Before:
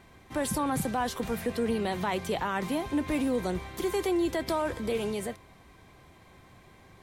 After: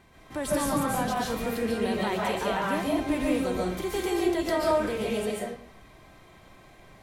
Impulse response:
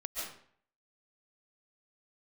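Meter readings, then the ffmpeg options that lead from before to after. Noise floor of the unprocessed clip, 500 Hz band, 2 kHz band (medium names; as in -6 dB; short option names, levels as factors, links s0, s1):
-56 dBFS, +3.0 dB, +3.0 dB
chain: -filter_complex "[1:a]atrim=start_sample=2205[s0];[0:a][s0]afir=irnorm=-1:irlink=0,volume=1.19"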